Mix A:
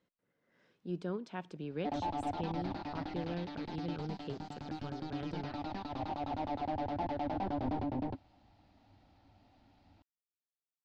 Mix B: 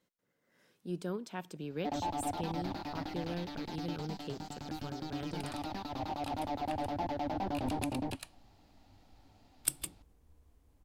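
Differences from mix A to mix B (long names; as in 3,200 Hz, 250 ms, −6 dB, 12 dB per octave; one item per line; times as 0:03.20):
second sound: unmuted
master: remove high-frequency loss of the air 150 metres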